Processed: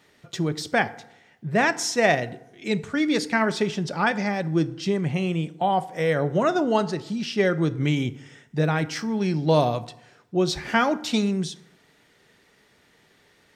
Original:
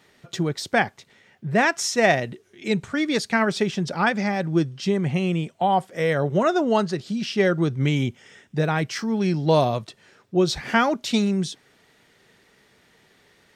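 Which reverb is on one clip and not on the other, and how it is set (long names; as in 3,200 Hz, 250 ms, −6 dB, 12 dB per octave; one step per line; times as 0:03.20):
feedback delay network reverb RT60 0.82 s, low-frequency decay 1×, high-frequency decay 0.55×, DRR 13 dB
level −1.5 dB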